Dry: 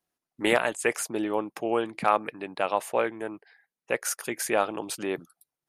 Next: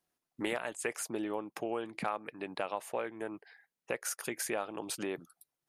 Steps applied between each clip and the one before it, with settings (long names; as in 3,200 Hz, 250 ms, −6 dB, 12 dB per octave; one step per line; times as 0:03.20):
downward compressor 3 to 1, threshold −35 dBFS, peak gain reduction 14.5 dB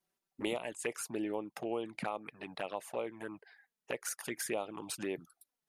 flanger swept by the level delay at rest 5.2 ms, full sweep at −31 dBFS
level +1 dB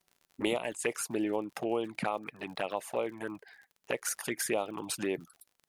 surface crackle 56 per second −51 dBFS
level +5 dB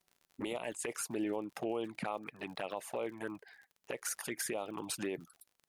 brickwall limiter −24 dBFS, peak gain reduction 9.5 dB
level −2.5 dB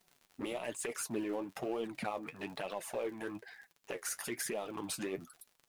mu-law and A-law mismatch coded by mu
flanger 1.1 Hz, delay 4.1 ms, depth 9.4 ms, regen +46%
level +1.5 dB